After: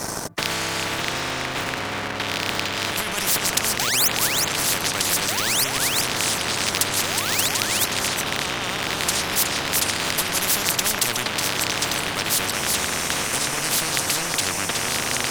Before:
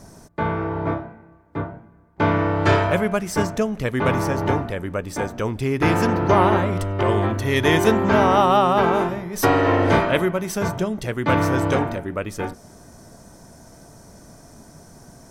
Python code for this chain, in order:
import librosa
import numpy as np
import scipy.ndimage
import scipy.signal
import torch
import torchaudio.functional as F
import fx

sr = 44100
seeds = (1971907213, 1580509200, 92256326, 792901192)

y = fx.rattle_buzz(x, sr, strikes_db=-20.0, level_db=-12.0)
y = fx.over_compress(y, sr, threshold_db=-23.0, ratio=-0.5)
y = fx.spec_paint(y, sr, seeds[0], shape='rise', start_s=3.79, length_s=0.29, low_hz=700.0, high_hz=6600.0, level_db=-12.0)
y = fx.echo_pitch(y, sr, ms=505, semitones=-4, count=2, db_per_echo=-3.0)
y = scipy.signal.sosfilt(scipy.signal.butter(4, 120.0, 'highpass', fs=sr, output='sos'), y)
y = fx.low_shelf(y, sr, hz=230.0, db=9.5)
y = y + 10.0 ** (-10.0 / 20.0) * np.pad(y, (int(368 * sr / 1000.0), 0))[:len(y)]
y = fx.leveller(y, sr, passes=2)
y = fx.spectral_comp(y, sr, ratio=10.0)
y = F.gain(torch.from_numpy(y), -1.0).numpy()